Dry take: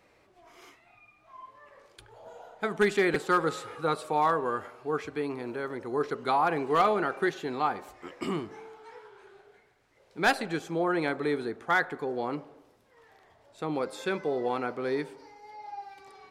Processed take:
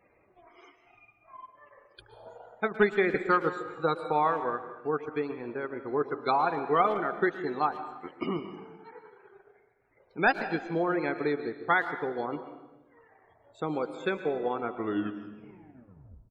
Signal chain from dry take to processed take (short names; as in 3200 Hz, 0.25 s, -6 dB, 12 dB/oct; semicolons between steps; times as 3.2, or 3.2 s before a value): tape stop at the end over 1.72 s; transient shaper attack +4 dB, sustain -10 dB; loudest bins only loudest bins 64; speakerphone echo 0.11 s, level -19 dB; reverb RT60 1.1 s, pre-delay 0.119 s, DRR 10 dB; gain -1.5 dB